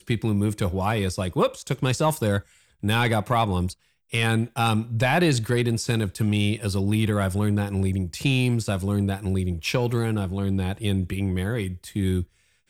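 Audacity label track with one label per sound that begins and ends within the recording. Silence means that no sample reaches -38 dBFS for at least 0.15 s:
2.830000	3.730000	sound
4.120000	12.240000	sound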